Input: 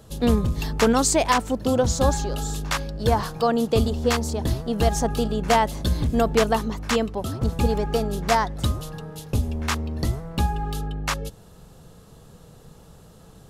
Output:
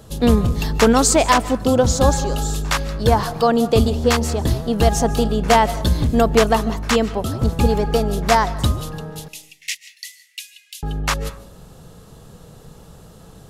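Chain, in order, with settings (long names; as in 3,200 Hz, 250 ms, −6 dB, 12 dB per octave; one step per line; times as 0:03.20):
0:09.28–0:10.83: Chebyshev high-pass with heavy ripple 1,900 Hz, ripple 3 dB
comb and all-pass reverb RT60 0.53 s, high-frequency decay 0.45×, pre-delay 110 ms, DRR 16 dB
level +5 dB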